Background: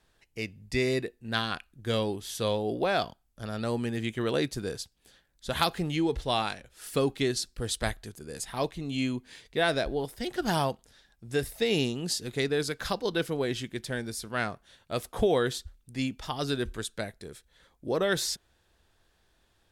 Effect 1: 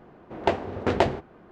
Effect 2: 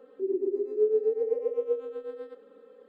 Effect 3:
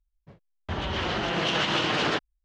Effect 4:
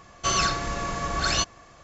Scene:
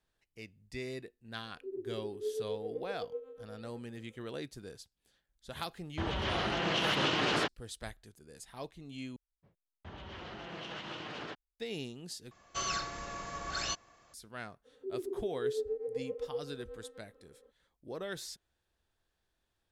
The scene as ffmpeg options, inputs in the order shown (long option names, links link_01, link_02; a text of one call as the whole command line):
ffmpeg -i bed.wav -i cue0.wav -i cue1.wav -i cue2.wav -i cue3.wav -filter_complex "[2:a]asplit=2[link_01][link_02];[3:a]asplit=2[link_03][link_04];[0:a]volume=-13.5dB[link_05];[link_04]highshelf=frequency=4200:gain=-4.5[link_06];[4:a]lowshelf=frequency=270:gain=-6[link_07];[link_05]asplit=3[link_08][link_09][link_10];[link_08]atrim=end=9.164[link_11];[link_06]atrim=end=2.44,asetpts=PTS-STARTPTS,volume=-17dB[link_12];[link_09]atrim=start=11.596:end=12.314[link_13];[link_07]atrim=end=1.83,asetpts=PTS-STARTPTS,volume=-11dB[link_14];[link_10]atrim=start=14.136[link_15];[link_01]atrim=end=2.88,asetpts=PTS-STARTPTS,volume=-12.5dB,afade=type=in:duration=0.004:curve=hsin,afade=type=out:start_time=2.876:duration=0.004:curve=hsin,adelay=1440[link_16];[link_03]atrim=end=2.44,asetpts=PTS-STARTPTS,volume=-5dB,afade=type=in:duration=0.004:curve=hsin,afade=type=out:start_time=2.436:duration=0.004:curve=hsin,adelay=233289S[link_17];[link_02]atrim=end=2.88,asetpts=PTS-STARTPTS,volume=-10dB,afade=type=in:duration=0.02,afade=type=out:start_time=2.86:duration=0.02,adelay=14640[link_18];[link_11][link_12]acrossfade=duration=0.004:curve1=hsin:curve2=hsin[link_19];[link_19][link_13]acrossfade=duration=0.004:curve1=hsin:curve2=hsin[link_20];[link_20][link_14]acrossfade=duration=0.004:curve1=hsin:curve2=hsin[link_21];[link_21][link_15]acrossfade=duration=0.004:curve1=hsin:curve2=hsin[link_22];[link_22][link_16][link_17][link_18]amix=inputs=4:normalize=0" out.wav